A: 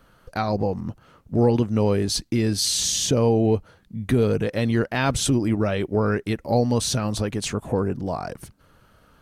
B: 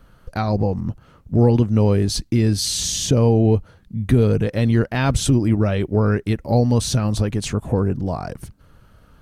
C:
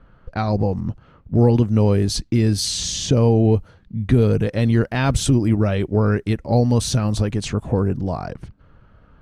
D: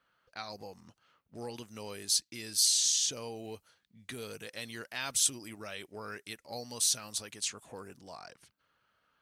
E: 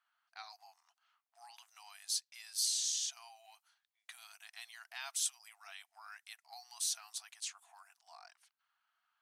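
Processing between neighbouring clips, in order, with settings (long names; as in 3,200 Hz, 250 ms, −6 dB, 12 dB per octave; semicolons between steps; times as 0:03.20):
low-shelf EQ 170 Hz +10.5 dB
low-pass that shuts in the quiet parts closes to 2,300 Hz, open at −14.5 dBFS
first difference
linear-phase brick-wall high-pass 660 Hz; level −7.5 dB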